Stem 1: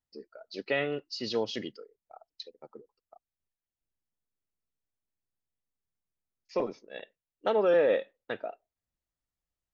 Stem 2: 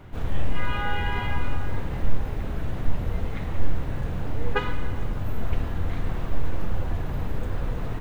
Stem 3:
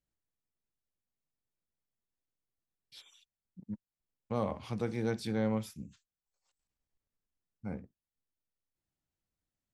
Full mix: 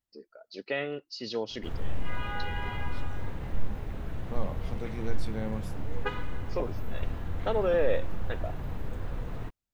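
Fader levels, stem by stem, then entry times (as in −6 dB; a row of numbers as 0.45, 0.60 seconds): −2.5, −7.0, −4.0 decibels; 0.00, 1.50, 0.00 seconds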